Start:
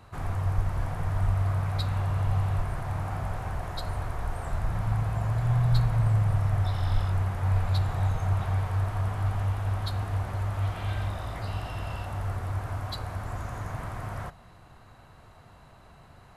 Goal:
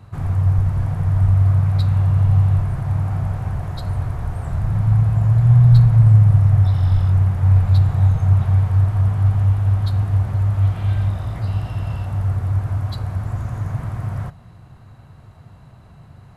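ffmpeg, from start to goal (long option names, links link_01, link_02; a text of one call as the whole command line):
ffmpeg -i in.wav -af "equalizer=frequency=120:width=0.63:gain=13.5" out.wav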